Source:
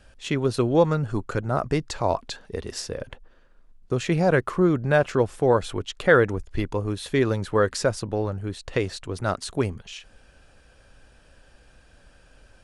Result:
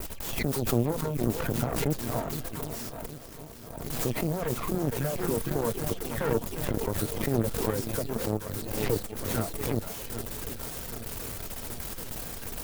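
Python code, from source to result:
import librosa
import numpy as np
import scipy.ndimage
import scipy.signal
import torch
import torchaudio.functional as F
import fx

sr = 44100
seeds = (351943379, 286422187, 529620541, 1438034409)

p1 = x + 0.5 * 10.0 ** (-19.0 / 20.0) * np.diff(np.sign(x), prepend=np.sign(x[:1]))
p2 = fx.high_shelf(p1, sr, hz=7200.0, db=11.5)
p3 = fx.level_steps(p2, sr, step_db=12)
p4 = fx.comb_fb(p3, sr, f0_hz=230.0, decay_s=0.24, harmonics='all', damping=0.0, mix_pct=70)
p5 = fx.dispersion(p4, sr, late='lows', ms=136.0, hz=2400.0)
p6 = p5 + fx.echo_swing(p5, sr, ms=772, ratio=1.5, feedback_pct=65, wet_db=-9.5, dry=0)
p7 = fx.dereverb_blind(p6, sr, rt60_s=0.51)
p8 = fx.cheby_harmonics(p7, sr, harmonics=(3, 5, 7, 8), levels_db=(-16, -17, -17, -20), full_scale_db=-16.5)
p9 = fx.tilt_shelf(p8, sr, db=7.0, hz=940.0)
p10 = fx.pre_swell(p9, sr, db_per_s=42.0)
y = F.gain(torch.from_numpy(p10), 3.5).numpy()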